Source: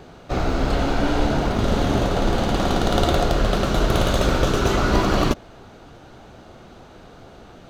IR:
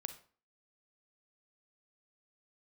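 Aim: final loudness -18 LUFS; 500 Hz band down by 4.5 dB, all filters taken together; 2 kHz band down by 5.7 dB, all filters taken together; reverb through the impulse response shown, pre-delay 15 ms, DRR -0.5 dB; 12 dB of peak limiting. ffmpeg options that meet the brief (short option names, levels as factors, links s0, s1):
-filter_complex "[0:a]equalizer=f=500:t=o:g=-5.5,equalizer=f=2000:t=o:g=-8,alimiter=limit=0.141:level=0:latency=1,asplit=2[s0][s1];[1:a]atrim=start_sample=2205,adelay=15[s2];[s1][s2]afir=irnorm=-1:irlink=0,volume=1.41[s3];[s0][s3]amix=inputs=2:normalize=0,volume=2.11"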